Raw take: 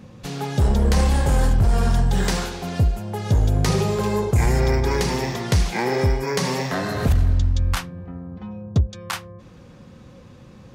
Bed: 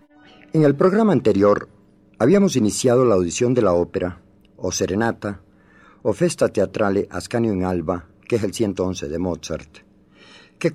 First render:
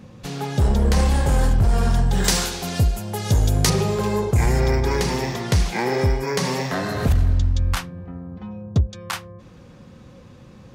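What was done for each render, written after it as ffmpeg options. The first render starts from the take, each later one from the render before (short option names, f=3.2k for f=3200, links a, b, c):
-filter_complex "[0:a]asettb=1/sr,asplit=3[a][b][c];[a]atrim=end=2.244[d];[b]atrim=start=2.24:end=3.7,asetpts=PTS-STARTPTS,afade=t=in:d=0.004:c=qsin,afade=t=out:st=1.456:d=0.004:c=qsin,highshelf=f=3.3k:g=11.5[e];[c]atrim=start=3.696[f];[d][e]acrossfade=d=0.004:c1=hsin:c2=qsin[g];[g][f]acrossfade=d=0.004:c1=qsin:c2=hsin"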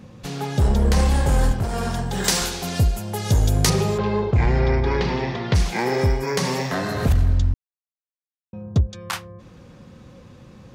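-filter_complex "[0:a]asettb=1/sr,asplit=3[a][b][c];[a]atrim=end=1.524[d];[b]atrim=start=1.52:end=2.41,asetpts=PTS-STARTPTS,afade=t=in:d=0.004:c=qsin,afade=t=out:st=0.886:d=0.004:c=qsin,highpass=f=170:p=1[e];[c]atrim=start=2.406[f];[d][e]acrossfade=d=0.004:c1=hsin:c2=qsin[g];[g][f]acrossfade=d=0.004:c1=qsin:c2=hsin,asplit=3[h][i][j];[h]afade=t=out:st=3.97:d=0.02[k];[i]lowpass=f=4.2k:w=0.5412,lowpass=f=4.2k:w=1.3066,afade=t=in:st=3.97:d=0.02,afade=t=out:st=5.54:d=0.02[l];[j]afade=t=in:st=5.54:d=0.02[m];[k][l][m]amix=inputs=3:normalize=0,asplit=3[n][o][p];[n]atrim=end=7.54,asetpts=PTS-STARTPTS,afade=t=out:st=7.536:d=0.004:c=hsin[q];[o]atrim=start=7.54:end=8.53,asetpts=PTS-STARTPTS,volume=0[r];[p]atrim=start=8.53,asetpts=PTS-STARTPTS,afade=t=in:d=0.004:c=hsin[s];[q][r][s]concat=n=3:v=0:a=1"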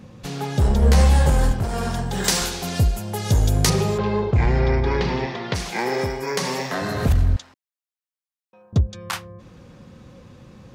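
-filter_complex "[0:a]asettb=1/sr,asplit=3[a][b][c];[a]atrim=end=0.814[d];[b]atrim=start=0.81:end=1.3,asetpts=PTS-STARTPTS,afade=t=in:d=0.004:c=qsin,afade=t=out:st=0.486:d=0.004:c=qsin,asplit=2[e][f];[f]adelay=13,volume=-2.5dB[g];[e][g]amix=inputs=2:normalize=0,atrim=end_sample=21609[h];[c]atrim=start=1.296[i];[d][h]acrossfade=d=0.004:c1=hsin:c2=qsin[j];[j][i]acrossfade=d=0.004:c1=qsin:c2=hsin,asettb=1/sr,asplit=3[k][l][m];[k]atrim=end=5.264[n];[l]atrim=start=5.26:end=6.82,asetpts=PTS-STARTPTS,afade=t=in:d=0.004:c=qsin,afade=t=out:st=1.556:d=0.004:c=qsin,highpass=f=270:p=1[o];[m]atrim=start=6.816[p];[n][o]acrossfade=d=0.004:c1=hsin:c2=qsin[q];[q][p]acrossfade=d=0.004:c1=qsin:c2=hsin,asettb=1/sr,asplit=3[r][s][t];[r]atrim=end=7.364[u];[s]atrim=start=7.36:end=8.73,asetpts=PTS-STARTPTS,afade=t=in:d=0.004:c=qsin,afade=t=out:st=1.366:d=0.004:c=qsin,highpass=820[v];[t]atrim=start=8.726[w];[u][v]acrossfade=d=0.004:c1=hsin:c2=qsin[x];[x][w]acrossfade=d=0.004:c1=qsin:c2=hsin"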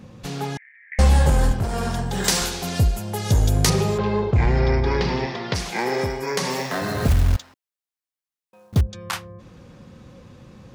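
-filter_complex "[0:a]asettb=1/sr,asplit=3[a][b][c];[a]atrim=end=0.574[d];[b]atrim=start=0.57:end=0.99,asetpts=PTS-STARTPTS,afade=t=in:d=0.004:c=qsin,afade=t=out:st=0.416:d=0.004:c=qsin,asuperpass=centerf=2000:order=8:qfactor=3.5[e];[c]atrim=start=0.986[f];[d][e]acrossfade=d=0.004:c1=hsin:c2=qsin[g];[g][f]acrossfade=d=0.004:c1=qsin:c2=hsin,asettb=1/sr,asplit=3[h][i][j];[h]atrim=end=4.574[k];[i]atrim=start=4.57:end=5.6,asetpts=PTS-STARTPTS,afade=t=in:d=0.004:c=qsin,afade=t=out:st=1.026:d=0.004:c=qsin,equalizer=f=5.1k:t=o:w=0.33:g=5.5[l];[j]atrim=start=5.596[m];[k][l]acrossfade=d=0.004:c1=hsin:c2=qsin[n];[n][m]acrossfade=d=0.004:c1=qsin:c2=hsin,asettb=1/sr,asplit=3[o][p][q];[o]atrim=end=6.504[r];[p]atrim=start=6.5:end=8.81,asetpts=PTS-STARTPTS,afade=t=in:d=0.004:c=qsin,afade=t=out:st=2.306:d=0.004:c=qsin,acrusher=bits=4:mode=log:mix=0:aa=0.000001[s];[q]atrim=start=8.806[t];[r][s]acrossfade=d=0.004:c1=hsin:c2=qsin[u];[u][t]acrossfade=d=0.004:c1=qsin:c2=hsin"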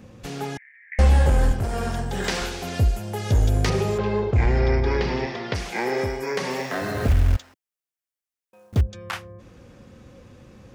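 -filter_complex "[0:a]acrossover=split=4400[a][b];[b]acompressor=threshold=-41dB:ratio=4:attack=1:release=60[c];[a][c]amix=inputs=2:normalize=0,equalizer=f=160:t=o:w=0.67:g=-7,equalizer=f=1k:t=o:w=0.67:g=-4,equalizer=f=4k:t=o:w=0.67:g=-4"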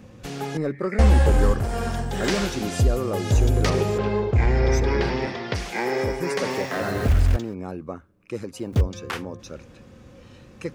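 -filter_complex "[1:a]volume=-11.5dB[a];[0:a][a]amix=inputs=2:normalize=0"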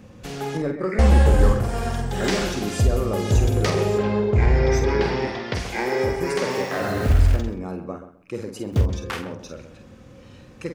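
-filter_complex "[0:a]asplit=2[a][b];[b]adelay=48,volume=-7dB[c];[a][c]amix=inputs=2:normalize=0,asplit=2[d][e];[e]adelay=130,lowpass=f=1.9k:p=1,volume=-10.5dB,asplit=2[f][g];[g]adelay=130,lowpass=f=1.9k:p=1,volume=0.22,asplit=2[h][i];[i]adelay=130,lowpass=f=1.9k:p=1,volume=0.22[j];[d][f][h][j]amix=inputs=4:normalize=0"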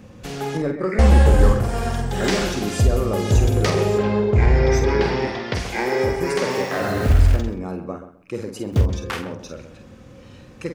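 -af "volume=2dB"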